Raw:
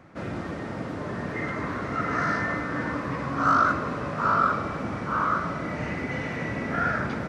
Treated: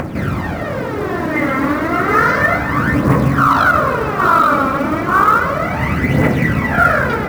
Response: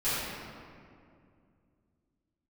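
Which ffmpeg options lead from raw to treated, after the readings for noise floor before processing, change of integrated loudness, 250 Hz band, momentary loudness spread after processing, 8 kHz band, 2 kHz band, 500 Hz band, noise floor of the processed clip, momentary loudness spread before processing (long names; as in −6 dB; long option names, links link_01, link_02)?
−34 dBFS, +12.5 dB, +13.0 dB, 9 LU, can't be measured, +13.0 dB, +13.5 dB, −21 dBFS, 11 LU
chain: -filter_complex "[0:a]highshelf=frequency=5400:gain=-10.5,bandreject=frequency=56.38:width_type=h:width=4,bandreject=frequency=112.76:width_type=h:width=4,bandreject=frequency=169.14:width_type=h:width=4,bandreject=frequency=225.52:width_type=h:width=4,bandreject=frequency=281.9:width_type=h:width=4,bandreject=frequency=338.28:width_type=h:width=4,bandreject=frequency=394.66:width_type=h:width=4,bandreject=frequency=451.04:width_type=h:width=4,bandreject=frequency=507.42:width_type=h:width=4,bandreject=frequency=563.8:width_type=h:width=4,bandreject=frequency=620.18:width_type=h:width=4,bandreject=frequency=676.56:width_type=h:width=4,bandreject=frequency=732.94:width_type=h:width=4,bandreject=frequency=789.32:width_type=h:width=4,bandreject=frequency=845.7:width_type=h:width=4,bandreject=frequency=902.08:width_type=h:width=4,bandreject=frequency=958.46:width_type=h:width=4,bandreject=frequency=1014.84:width_type=h:width=4,bandreject=frequency=1071.22:width_type=h:width=4,bandreject=frequency=1127.6:width_type=h:width=4,bandreject=frequency=1183.98:width_type=h:width=4,bandreject=frequency=1240.36:width_type=h:width=4,bandreject=frequency=1296.74:width_type=h:width=4,bandreject=frequency=1353.12:width_type=h:width=4,bandreject=frequency=1409.5:width_type=h:width=4,bandreject=frequency=1465.88:width_type=h:width=4,bandreject=frequency=1522.26:width_type=h:width=4,bandreject=frequency=1578.64:width_type=h:width=4,bandreject=frequency=1635.02:width_type=h:width=4,bandreject=frequency=1691.4:width_type=h:width=4,bandreject=frequency=1747.78:width_type=h:width=4,bandreject=frequency=1804.16:width_type=h:width=4,acompressor=mode=upward:threshold=-33dB:ratio=2.5,aeval=exprs='0.299*(cos(1*acos(clip(val(0)/0.299,-1,1)))-cos(1*PI/2))+0.0266*(cos(3*acos(clip(val(0)/0.299,-1,1)))-cos(3*PI/2))':channel_layout=same,aphaser=in_gain=1:out_gain=1:delay=3.8:decay=0.64:speed=0.32:type=triangular,acrusher=bits=7:mode=log:mix=0:aa=0.000001,asplit=2[link_01][link_02];[1:a]atrim=start_sample=2205[link_03];[link_02][link_03]afir=irnorm=-1:irlink=0,volume=-23.5dB[link_04];[link_01][link_04]amix=inputs=2:normalize=0,alimiter=level_in=15.5dB:limit=-1dB:release=50:level=0:latency=1,volume=-1dB"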